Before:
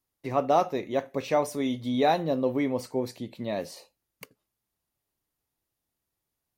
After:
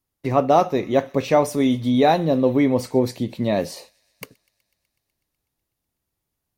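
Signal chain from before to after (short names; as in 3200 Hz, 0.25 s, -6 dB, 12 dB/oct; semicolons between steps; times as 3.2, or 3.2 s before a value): thin delay 0.124 s, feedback 77%, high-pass 2100 Hz, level -22 dB; in parallel at +1 dB: vocal rider within 3 dB 0.5 s; on the sum: gate -47 dBFS, range -6 dB; low shelf 270 Hz +6 dB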